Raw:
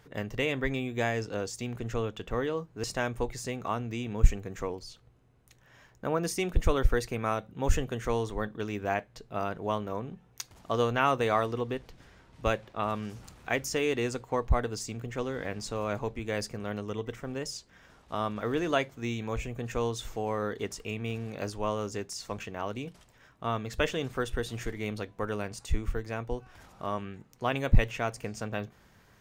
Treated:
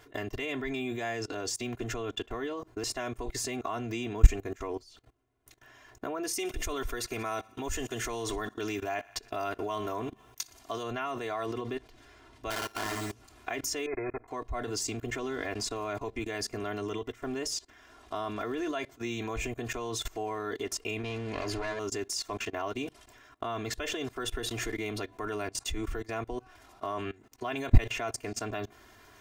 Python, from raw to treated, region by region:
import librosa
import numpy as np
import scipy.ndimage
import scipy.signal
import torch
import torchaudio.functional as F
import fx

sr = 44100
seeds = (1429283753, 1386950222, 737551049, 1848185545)

y = fx.chain(x, sr, fx.high_shelf(hz=3100.0, db=7.5),
    fx.echo_thinned(ms=60, feedback_pct=73, hz=480.0, wet_db=-21), at=(6.33, 10.83))
y = fx.chain(y, sr, fx.sample_sort(block=32),
    fx.room_flutter(wall_m=9.8, rt60_s=0.54),
    fx.doppler_dist(depth_ms=0.88), at=(12.5, 13.11))
y = fx.chain(y, sr, fx.lower_of_two(delay_ms=2.4),
    fx.brickwall_lowpass(high_hz=2600.0),
    fx.level_steps(step_db=19), at=(13.86, 14.28))
y = fx.chain(y, sr, fx.lower_of_two(delay_ms=0.43),
    fx.leveller(passes=2),
    fx.air_absorb(metres=61.0), at=(21.03, 21.79))
y = fx.low_shelf(y, sr, hz=150.0, db=-8.5)
y = fx.level_steps(y, sr, step_db=22)
y = y + 0.95 * np.pad(y, (int(2.9 * sr / 1000.0), 0))[:len(y)]
y = y * 10.0 ** (7.5 / 20.0)